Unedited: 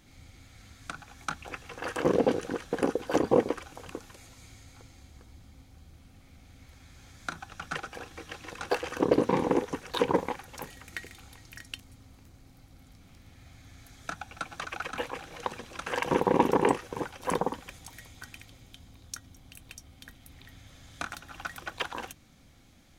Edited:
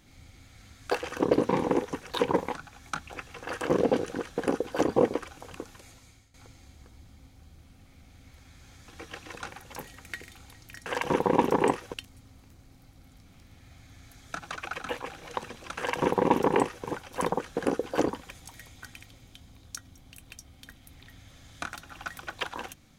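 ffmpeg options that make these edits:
-filter_complex "[0:a]asplit=11[a][b][c][d][e][f][g][h][i][j][k];[a]atrim=end=0.902[l];[b]atrim=start=8.698:end=10.352[m];[c]atrim=start=0.898:end=4.69,asetpts=PTS-STARTPTS,afade=t=out:st=3.342:d=0.45:silence=0.141254[n];[d]atrim=start=4.69:end=7.232,asetpts=PTS-STARTPTS,afade=t=in:d=0.004:c=hsin:silence=0.141254[o];[e]atrim=start=8.058:end=8.702[p];[f]atrim=start=10.348:end=11.692[q];[g]atrim=start=15.868:end=16.952[r];[h]atrim=start=11.688:end=14.152[s];[i]atrim=start=14.488:end=17.492[t];[j]atrim=start=2.558:end=3.262[u];[k]atrim=start=17.488[v];[l][m]acrossfade=d=0.004:c1=hsin:c2=hsin[w];[n][o]concat=n=2:v=0:a=1[x];[w][x]acrossfade=d=0.004:c1=hsin:c2=hsin[y];[y][p]acrossfade=d=0.004:c1=hsin:c2=hsin[z];[z][q]acrossfade=d=0.004:c1=hsin:c2=hsin[aa];[aa][r]acrossfade=d=0.004:c1=hsin:c2=hsin[ab];[ab][s]acrossfade=d=0.004:c1=hsin:c2=hsin[ac];[ac][t]acrossfade=d=0.004:c1=hsin:c2=hsin[ad];[ad][u]acrossfade=d=0.004:c1=hsin:c2=hsin[ae];[ae][v]acrossfade=d=0.004:c1=hsin:c2=hsin"

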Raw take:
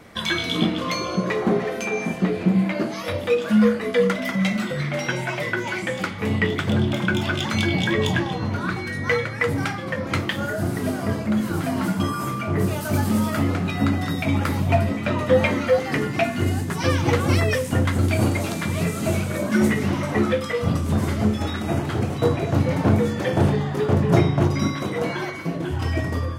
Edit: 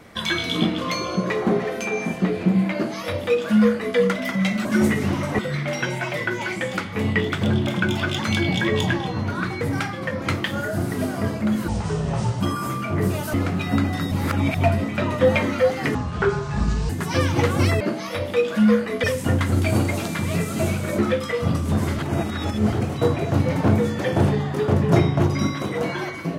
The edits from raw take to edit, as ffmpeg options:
-filter_complex "[0:a]asplit=16[a][b][c][d][e][f][g][h][i][j][k][l][m][n][o][p];[a]atrim=end=4.652[q];[b]atrim=start=19.448:end=20.192[r];[c]atrim=start=4.648:end=8.872[s];[d]atrim=start=9.458:end=11.534[t];[e]atrim=start=11.53:end=11.98,asetpts=PTS-STARTPTS,asetrate=27342,aresample=44100,atrim=end_sample=32008,asetpts=PTS-STARTPTS[u];[f]atrim=start=11.976:end=12.912[v];[g]atrim=start=13.418:end=14.202[w];[h]atrim=start=14.198:end=14.652,asetpts=PTS-STARTPTS,areverse[x];[i]atrim=start=14.648:end=16.034[y];[j]atrim=start=16.03:end=16.59,asetpts=PTS-STARTPTS,asetrate=26019,aresample=44100[z];[k]atrim=start=16.586:end=17.502[aa];[l]atrim=start=2.738:end=3.972[ab];[m]atrim=start=17.498:end=19.452[ac];[n]atrim=start=20.188:end=21.192[ad];[o]atrim=start=21.188:end=21.932,asetpts=PTS-STARTPTS,areverse[ae];[p]atrim=start=21.928[af];[q][r]acrossfade=d=0.004:c1=hsin:c2=hsin[ag];[ag][s]acrossfade=d=0.004:c1=hsin:c2=hsin[ah];[ah][t]acrossfade=d=0.004:c1=hsin:c2=hsin[ai];[ai][u]acrossfade=d=0.004:c1=hsin:c2=hsin[aj];[aj][v]acrossfade=d=0.004:c1=hsin:c2=hsin[ak];[ak][w]acrossfade=d=0.004:c1=hsin:c2=hsin[al];[al][x]acrossfade=d=0.004:c1=hsin:c2=hsin[am];[am][y]acrossfade=d=0.004:c1=hsin:c2=hsin[an];[an][z]acrossfade=d=0.004:c1=hsin:c2=hsin[ao];[ao][aa]acrossfade=d=0.004:c1=hsin:c2=hsin[ap];[ap][ab]acrossfade=d=0.004:c1=hsin:c2=hsin[aq];[aq][ac]acrossfade=d=0.004:c1=hsin:c2=hsin[ar];[ar][ad]acrossfade=d=0.004:c1=hsin:c2=hsin[as];[as][ae]acrossfade=d=0.004:c1=hsin:c2=hsin[at];[at][af]acrossfade=d=0.004:c1=hsin:c2=hsin"

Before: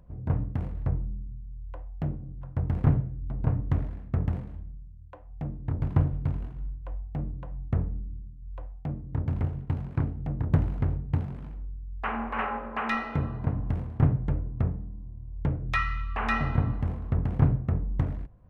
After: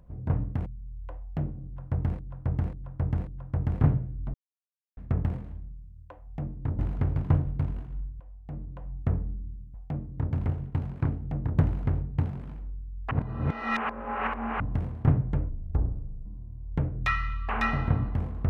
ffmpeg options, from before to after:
-filter_complex "[0:a]asplit=15[a][b][c][d][e][f][g][h][i][j][k][l][m][n][o];[a]atrim=end=0.662[p];[b]atrim=start=1.308:end=2.842[q];[c]atrim=start=2.298:end=2.842[r];[d]atrim=start=2.298:end=2.842[s];[e]atrim=start=2.298:end=3.37,asetpts=PTS-STARTPTS,afade=t=out:st=1.068:d=0.004:c=hsin[t];[f]atrim=start=3.37:end=4,asetpts=PTS-STARTPTS,volume=0[u];[g]atrim=start=4:end=5.822,asetpts=PTS-STARTPTS,afade=t=in:d=0.004:c=hsin[v];[h]atrim=start=10.598:end=10.972[w];[i]atrim=start=5.818:end=6.86,asetpts=PTS-STARTPTS,afade=t=out:st=1.038:d=0.004:c=hsin:silence=0.149624[x];[j]atrim=start=6.86:end=8.402,asetpts=PTS-STARTPTS,afade=t=in:d=0.79:silence=0.149624[y];[k]atrim=start=8.688:end=12.062[z];[l]atrim=start=12.058:end=13.552,asetpts=PTS-STARTPTS,areverse[aa];[m]atrim=start=13.548:end=14.444[ab];[n]atrim=start=14.44:end=14.93,asetpts=PTS-STARTPTS,asetrate=28224,aresample=44100,atrim=end_sample=33764,asetpts=PTS-STARTPTS[ac];[o]atrim=start=14.926[ad];[p][q]acrossfade=d=0.004:c1=hsin:c2=hsin[ae];[ae][r]acrossfade=d=0.004:c1=hsin:c2=hsin[af];[af][s]acrossfade=d=0.004:c1=hsin:c2=hsin[ag];[t][u][v]concat=n=3:v=0:a=1[ah];[ag][ah]acrossfade=d=0.004:c1=hsin:c2=hsin[ai];[ai][w]acrossfade=d=0.004:c1=hsin:c2=hsin[aj];[x][y]concat=n=2:v=0:a=1[ak];[aj][ak]acrossfade=d=0.004:c1=hsin:c2=hsin[al];[al][z]acrossfade=d=0.004:c1=hsin:c2=hsin[am];[am][aa]acrossfade=d=0.004:c1=hsin:c2=hsin[an];[an][ab]acrossfade=d=0.004:c1=hsin:c2=hsin[ao];[ao][ac]acrossfade=d=0.004:c1=hsin:c2=hsin[ap];[ap][ad]acrossfade=d=0.004:c1=hsin:c2=hsin"

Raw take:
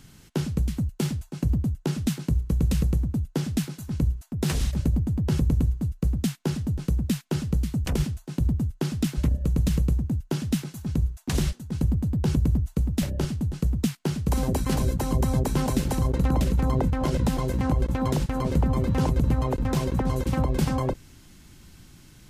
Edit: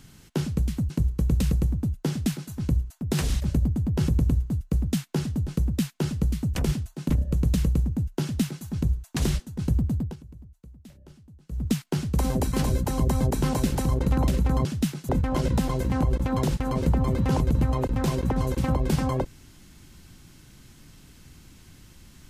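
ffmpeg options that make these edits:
-filter_complex "[0:a]asplit=7[a][b][c][d][e][f][g];[a]atrim=end=0.902[h];[b]atrim=start=2.208:end=8.412[i];[c]atrim=start=9.228:end=12.29,asetpts=PTS-STARTPTS,afade=t=out:st=2.872:d=0.19:silence=0.0707946[j];[d]atrim=start=12.29:end=13.61,asetpts=PTS-STARTPTS,volume=-23dB[k];[e]atrim=start=13.61:end=16.782,asetpts=PTS-STARTPTS,afade=t=in:d=0.19:silence=0.0707946[l];[f]atrim=start=10.348:end=10.792[m];[g]atrim=start=16.778[n];[h][i]acrossfade=d=0.004:c1=hsin:c2=hsin[o];[j][k][l]concat=n=3:v=0:a=1[p];[o][p]acrossfade=d=0.004:c1=hsin:c2=hsin[q];[q][m]acrossfade=d=0.004:c1=hsin:c2=hsin[r];[r][n]acrossfade=d=0.004:c1=hsin:c2=hsin"

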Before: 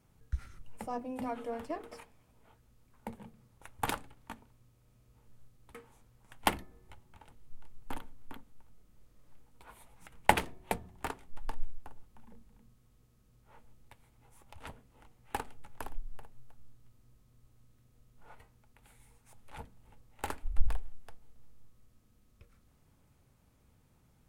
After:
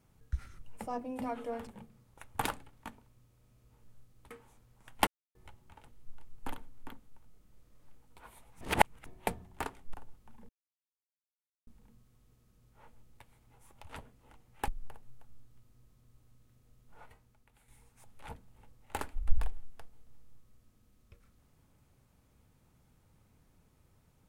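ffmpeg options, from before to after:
-filter_complex "[0:a]asplit=10[a][b][c][d][e][f][g][h][i][j];[a]atrim=end=1.672[k];[b]atrim=start=3.108:end=6.51,asetpts=PTS-STARTPTS,afade=t=out:st=3.398:d=0.004:c=hsin[l];[c]atrim=start=6.51:end=6.79,asetpts=PTS-STARTPTS,volume=0[m];[d]atrim=start=6.79:end=10.052,asetpts=PTS-STARTPTS,afade=t=in:d=0.004:c=hsin[n];[e]atrim=start=10.048:end=10.502,asetpts=PTS-STARTPTS,areverse[o];[f]atrim=start=10.498:end=11.382[p];[g]atrim=start=11.828:end=12.38,asetpts=PTS-STARTPTS,afade=t=out:st=0.548:d=0.004:c=hsin,apad=pad_dur=1.18[q];[h]atrim=start=12.38:end=15.392,asetpts=PTS-STARTPTS,afade=t=in:d=0.004:c=hsin[r];[i]atrim=start=15.968:end=18.97,asetpts=PTS-STARTPTS,afade=t=out:st=2.312:d=0.69:silence=0.421697[s];[j]atrim=start=18.97,asetpts=PTS-STARTPTS,afade=t=in:d=0.004:c=hsin:silence=0.421697[t];[l][m][n]concat=n=3:v=0:a=1[u];[k][u]acrossfade=d=0.004:c1=hsin:c2=hsin[v];[v][o]acrossfade=d=0.004:c1=hsin:c2=hsin[w];[w][p]acrossfade=d=0.004:c1=hsin:c2=hsin[x];[q][r]concat=n=2:v=0:a=1[y];[x][y]acrossfade=d=0.004:c1=hsin:c2=hsin[z];[s][t]concat=n=2:v=0:a=1[aa];[z][aa]acrossfade=d=0.004:c1=hsin:c2=hsin"

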